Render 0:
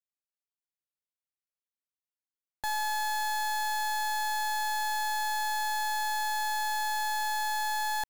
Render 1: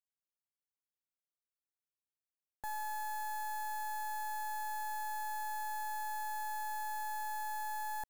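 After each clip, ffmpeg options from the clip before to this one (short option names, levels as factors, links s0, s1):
-af "equalizer=f=3700:t=o:w=1.6:g=-14,volume=0.473"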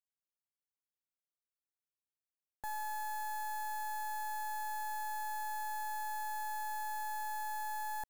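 -af anull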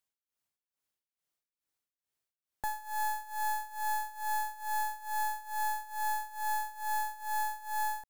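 -af "tremolo=f=2.3:d=0.88,volume=2.66"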